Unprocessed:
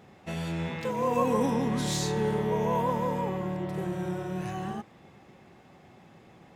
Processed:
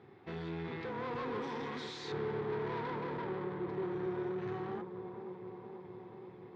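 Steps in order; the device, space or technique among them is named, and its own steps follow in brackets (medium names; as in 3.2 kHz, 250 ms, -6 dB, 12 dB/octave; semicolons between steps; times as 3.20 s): 1.42–2.12 s: tilt EQ +4 dB/octave; analogue delay pedal into a guitar amplifier (bucket-brigade echo 483 ms, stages 4096, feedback 73%, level -13 dB; valve stage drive 35 dB, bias 0.65; cabinet simulation 100–3800 Hz, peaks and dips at 120 Hz +6 dB, 190 Hz -8 dB, 380 Hz +10 dB, 600 Hz -10 dB, 2.8 kHz -8 dB); trim -1 dB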